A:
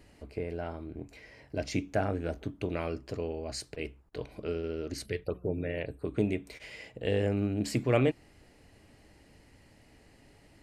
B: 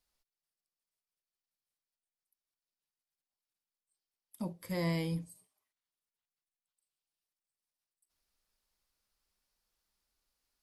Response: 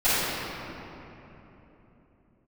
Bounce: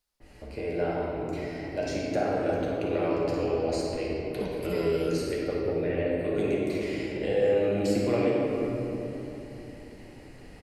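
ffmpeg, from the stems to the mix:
-filter_complex "[0:a]acrossover=split=290|1100[link_01][link_02][link_03];[link_01]acompressor=threshold=-46dB:ratio=4[link_04];[link_02]acompressor=threshold=-32dB:ratio=4[link_05];[link_03]acompressor=threshold=-49dB:ratio=4[link_06];[link_04][link_05][link_06]amix=inputs=3:normalize=0,adynamicequalizer=threshold=0.00126:dfrequency=3000:dqfactor=0.7:tfrequency=3000:tqfactor=0.7:attack=5:release=100:ratio=0.375:range=2:mode=boostabove:tftype=highshelf,adelay=200,volume=0.5dB,asplit=2[link_07][link_08];[link_08]volume=-10.5dB[link_09];[1:a]acompressor=threshold=-32dB:ratio=6,volume=0.5dB[link_10];[2:a]atrim=start_sample=2205[link_11];[link_09][link_11]afir=irnorm=-1:irlink=0[link_12];[link_07][link_10][link_12]amix=inputs=3:normalize=0"

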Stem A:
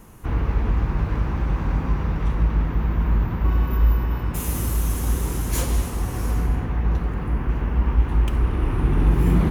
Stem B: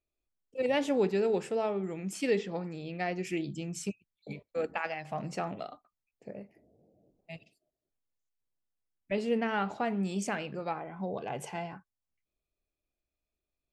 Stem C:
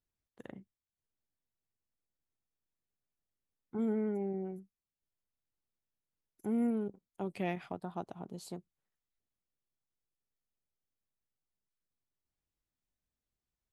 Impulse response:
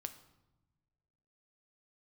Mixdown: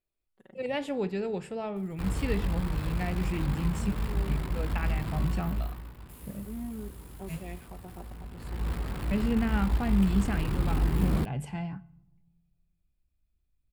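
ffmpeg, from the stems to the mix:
-filter_complex "[0:a]acrusher=bits=6:dc=4:mix=0:aa=0.000001,adelay=1750,volume=2.5dB,afade=type=out:start_time=5.09:duration=0.79:silence=0.237137,afade=type=in:start_time=8.34:duration=0.39:silence=0.223872,asplit=2[link_01][link_02];[link_02]volume=-13dB[link_03];[1:a]asubboost=boost=10:cutoff=150,volume=-5dB,asplit=3[link_04][link_05][link_06];[link_05]volume=-4.5dB[link_07];[2:a]aecho=1:1:5.3:1,acontrast=84,volume=-18.5dB,asplit=2[link_08][link_09];[link_09]volume=-10.5dB[link_10];[link_06]apad=whole_len=605633[link_11];[link_08][link_11]sidechaincompress=threshold=-46dB:ratio=8:attack=16:release=223[link_12];[3:a]atrim=start_sample=2205[link_13];[link_03][link_07][link_10]amix=inputs=3:normalize=0[link_14];[link_14][link_13]afir=irnorm=-1:irlink=0[link_15];[link_01][link_04][link_12][link_15]amix=inputs=4:normalize=0,equalizer=frequency=6100:width_type=o:width=0.33:gain=-10"

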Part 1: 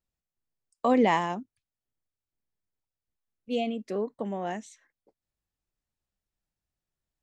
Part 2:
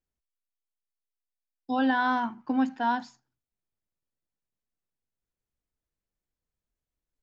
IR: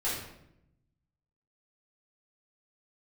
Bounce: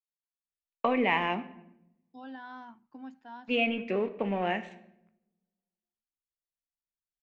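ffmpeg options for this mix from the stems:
-filter_complex "[0:a]acompressor=threshold=-27dB:ratio=6,aeval=exprs='sgn(val(0))*max(abs(val(0))-0.00178,0)':channel_layout=same,lowpass=frequency=2500:width_type=q:width=6.1,volume=2dB,asplit=2[link_01][link_02];[link_02]volume=-16.5dB[link_03];[1:a]adelay=450,volume=-19.5dB[link_04];[2:a]atrim=start_sample=2205[link_05];[link_03][link_05]afir=irnorm=-1:irlink=0[link_06];[link_01][link_04][link_06]amix=inputs=3:normalize=0"

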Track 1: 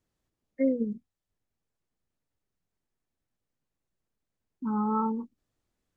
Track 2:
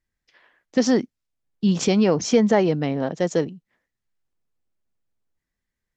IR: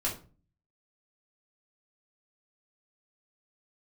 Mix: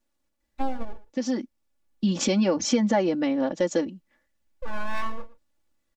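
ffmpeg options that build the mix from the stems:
-filter_complex "[0:a]aeval=exprs='abs(val(0))':channel_layout=same,volume=1.5dB,asplit=3[link_01][link_02][link_03];[link_02]volume=-19.5dB[link_04];[1:a]deesser=0.4,adelay=400,volume=0dB[link_05];[link_03]apad=whole_len=280552[link_06];[link_05][link_06]sidechaincompress=threshold=-44dB:ratio=3:attack=16:release=773[link_07];[link_04]aecho=0:1:116:1[link_08];[link_01][link_07][link_08]amix=inputs=3:normalize=0,aecho=1:1:3.5:0.95,acompressor=threshold=-24dB:ratio=2"

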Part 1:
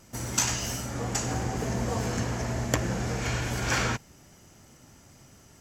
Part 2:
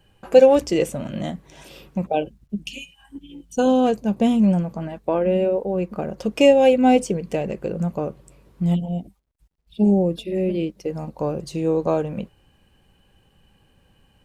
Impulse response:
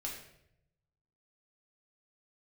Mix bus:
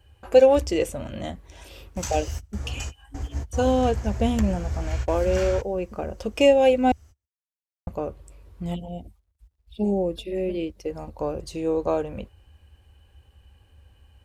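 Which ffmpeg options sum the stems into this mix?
-filter_complex "[0:a]adelay=1650,volume=-8.5dB[link_01];[1:a]highpass=frequency=110:poles=1,volume=-2dB,asplit=3[link_02][link_03][link_04];[link_02]atrim=end=6.92,asetpts=PTS-STARTPTS,afade=type=out:start_time=6.916:duration=0.004:curve=hsin[link_05];[link_03]atrim=start=6.92:end=7.87,asetpts=PTS-STARTPTS,volume=0[link_06];[link_04]atrim=start=7.87,asetpts=PTS-STARTPTS,afade=type=in:duration=0.004:curve=hsin[link_07];[link_05][link_06][link_07]concat=n=3:v=0:a=1,asplit=2[link_08][link_09];[link_09]apad=whole_len=319911[link_10];[link_01][link_10]sidechaingate=range=-33dB:threshold=-43dB:ratio=16:detection=peak[link_11];[link_11][link_08]amix=inputs=2:normalize=0,lowshelf=frequency=110:width_type=q:width=3:gain=12.5"

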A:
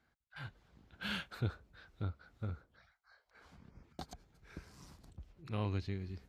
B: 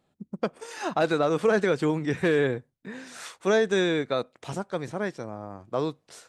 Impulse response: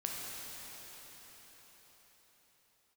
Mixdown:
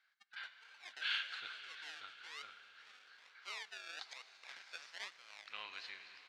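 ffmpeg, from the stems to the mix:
-filter_complex "[0:a]volume=1.5dB,asplit=3[link_01][link_02][link_03];[link_02]volume=-5.5dB[link_04];[1:a]acrusher=samples=34:mix=1:aa=0.000001:lfo=1:lforange=20.4:lforate=1.1,volume=-5dB,afade=type=in:start_time=3.97:duration=0.39:silence=0.354813,asplit=3[link_05][link_06][link_07];[link_06]volume=-20.5dB[link_08];[link_07]volume=-23dB[link_09];[link_03]apad=whole_len=277373[link_10];[link_05][link_10]sidechaincompress=threshold=-56dB:ratio=8:attack=7.4:release=204[link_11];[2:a]atrim=start_sample=2205[link_12];[link_04][link_08]amix=inputs=2:normalize=0[link_13];[link_13][link_12]afir=irnorm=-1:irlink=0[link_14];[link_09]aecho=0:1:549:1[link_15];[link_01][link_11][link_14][link_15]amix=inputs=4:normalize=0,asuperpass=centerf=2900:order=4:qfactor=0.78"

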